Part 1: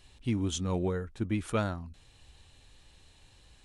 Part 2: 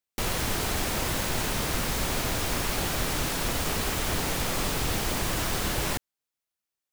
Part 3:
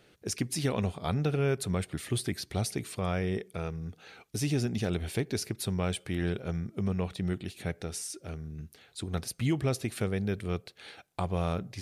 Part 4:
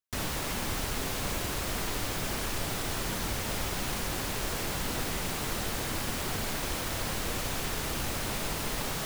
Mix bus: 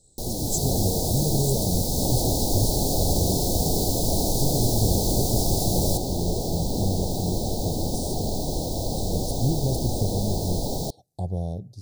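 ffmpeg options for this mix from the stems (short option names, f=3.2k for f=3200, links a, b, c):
-filter_complex "[0:a]lowpass=f=7.9k:t=q:w=12,volume=-6dB[a];[1:a]volume=-2dB[b];[2:a]equalizer=f=110:w=1.3:g=9.5,volume=-7.5dB[c];[3:a]equalizer=f=15k:t=o:w=1.8:g=-9.5,adelay=1850,volume=2.5dB[d];[a][b][c][d]amix=inputs=4:normalize=0,dynaudnorm=f=140:g=7:m=6dB,asuperstop=centerf=1800:order=12:qfactor=0.57"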